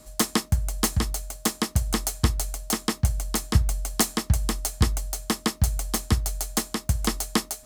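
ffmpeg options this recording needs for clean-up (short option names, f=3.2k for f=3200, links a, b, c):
-af "bandreject=f=620:w=30"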